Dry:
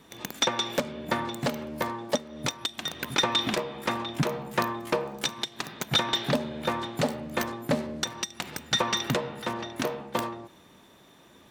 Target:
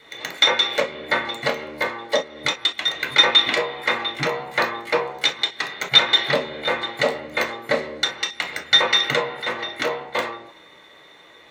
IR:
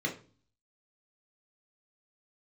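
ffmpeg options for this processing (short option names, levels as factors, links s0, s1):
-filter_complex "[0:a]equalizer=f=125:t=o:w=1:g=-10,equalizer=f=250:t=o:w=1:g=-10,equalizer=f=500:t=o:w=1:g=4,equalizer=f=1000:t=o:w=1:g=7,equalizer=f=2000:t=o:w=1:g=8,equalizer=f=4000:t=o:w=1:g=5,equalizer=f=8000:t=o:w=1:g=3[s0];[1:a]atrim=start_sample=2205,atrim=end_sample=3087[s1];[s0][s1]afir=irnorm=-1:irlink=0,volume=0.668"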